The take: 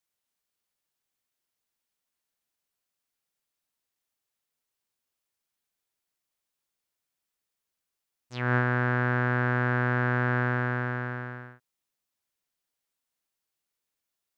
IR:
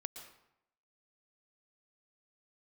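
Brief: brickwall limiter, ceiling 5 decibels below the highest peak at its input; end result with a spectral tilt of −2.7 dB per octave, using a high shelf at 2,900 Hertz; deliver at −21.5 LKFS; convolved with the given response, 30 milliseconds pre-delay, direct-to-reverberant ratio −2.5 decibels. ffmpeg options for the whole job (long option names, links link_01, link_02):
-filter_complex "[0:a]highshelf=frequency=2900:gain=-4,alimiter=limit=-17.5dB:level=0:latency=1,asplit=2[link_01][link_02];[1:a]atrim=start_sample=2205,adelay=30[link_03];[link_02][link_03]afir=irnorm=-1:irlink=0,volume=5dB[link_04];[link_01][link_04]amix=inputs=2:normalize=0,volume=3.5dB"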